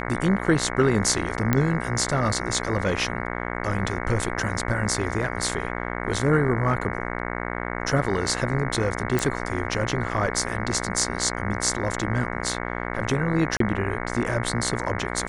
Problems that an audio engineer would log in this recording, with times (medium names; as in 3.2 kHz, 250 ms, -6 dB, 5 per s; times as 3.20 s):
buzz 60 Hz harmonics 37 -30 dBFS
1.53 s: pop -7 dBFS
9.19 s: pop
12.41–12.42 s: dropout 5.3 ms
13.57–13.60 s: dropout 33 ms